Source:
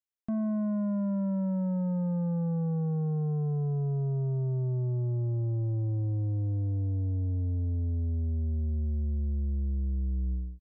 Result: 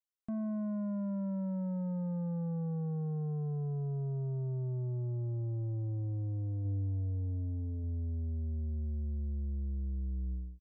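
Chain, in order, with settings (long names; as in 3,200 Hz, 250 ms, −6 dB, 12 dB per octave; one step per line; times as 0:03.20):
0:06.62–0:07.84: double-tracking delay 30 ms −11 dB
level −6 dB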